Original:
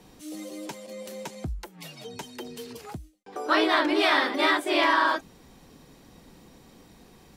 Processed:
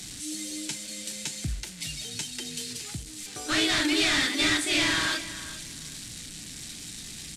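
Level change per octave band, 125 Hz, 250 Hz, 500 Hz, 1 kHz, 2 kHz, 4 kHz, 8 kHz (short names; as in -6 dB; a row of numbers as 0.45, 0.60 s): +4.5, -1.0, -9.0, -11.5, -1.5, +4.5, +15.5 dB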